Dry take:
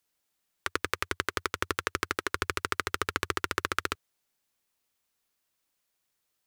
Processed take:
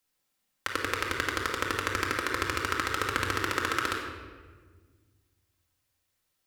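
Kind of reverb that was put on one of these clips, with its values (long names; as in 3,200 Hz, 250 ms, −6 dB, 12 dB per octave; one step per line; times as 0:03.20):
rectangular room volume 1,500 cubic metres, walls mixed, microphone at 2.1 metres
level −1.5 dB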